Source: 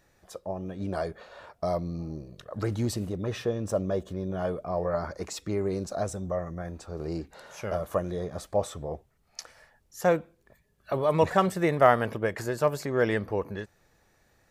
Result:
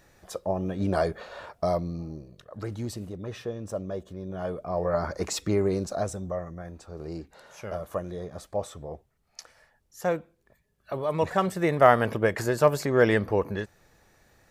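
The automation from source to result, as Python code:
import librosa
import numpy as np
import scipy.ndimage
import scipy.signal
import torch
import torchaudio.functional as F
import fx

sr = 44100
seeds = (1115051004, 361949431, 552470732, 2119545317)

y = fx.gain(x, sr, db=fx.line((1.37, 6.0), (2.47, -5.0), (4.17, -5.0), (5.34, 6.5), (6.61, -3.5), (11.17, -3.5), (12.2, 4.5)))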